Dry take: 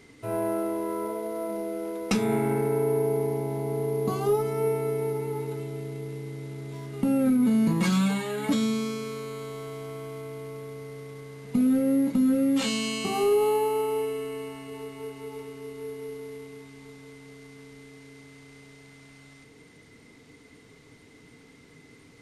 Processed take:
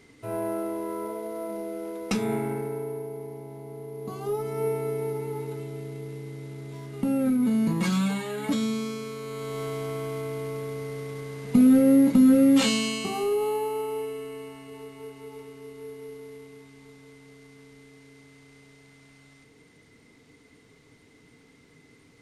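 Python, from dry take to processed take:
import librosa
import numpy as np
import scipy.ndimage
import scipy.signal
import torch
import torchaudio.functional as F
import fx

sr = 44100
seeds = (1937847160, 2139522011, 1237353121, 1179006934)

y = fx.gain(x, sr, db=fx.line((2.29, -2.0), (3.1, -11.0), (3.91, -11.0), (4.62, -1.5), (9.18, -1.5), (9.62, 5.5), (12.59, 5.5), (13.22, -3.5)))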